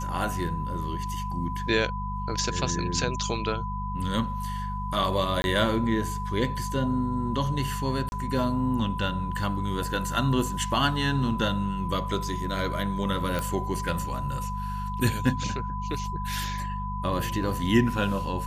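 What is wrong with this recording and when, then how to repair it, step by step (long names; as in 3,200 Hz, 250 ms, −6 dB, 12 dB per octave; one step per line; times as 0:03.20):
mains hum 50 Hz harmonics 4 −33 dBFS
whistle 1,000 Hz −33 dBFS
0:05.42–0:05.44: drop-out 21 ms
0:08.09–0:08.12: drop-out 31 ms
0:13.39: click −15 dBFS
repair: click removal
notch filter 1,000 Hz, Q 30
hum removal 50 Hz, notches 4
repair the gap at 0:05.42, 21 ms
repair the gap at 0:08.09, 31 ms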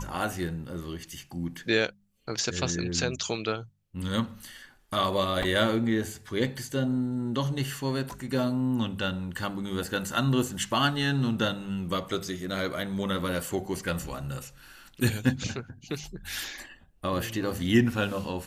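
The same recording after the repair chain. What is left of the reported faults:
none of them is left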